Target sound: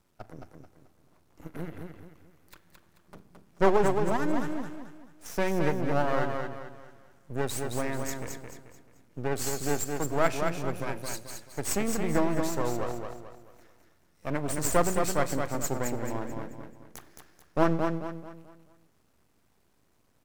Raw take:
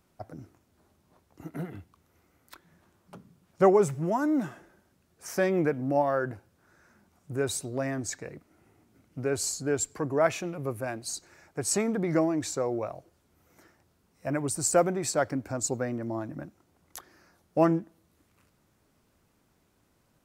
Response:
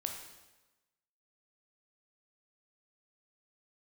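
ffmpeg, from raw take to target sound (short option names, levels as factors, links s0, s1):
-filter_complex "[0:a]aeval=exprs='max(val(0),0)':c=same,aecho=1:1:218|436|654|872|1090:0.562|0.208|0.077|0.0285|0.0105,asplit=2[s0][s1];[1:a]atrim=start_sample=2205,adelay=41[s2];[s1][s2]afir=irnorm=-1:irlink=0,volume=0.119[s3];[s0][s3]amix=inputs=2:normalize=0,volume=1.19"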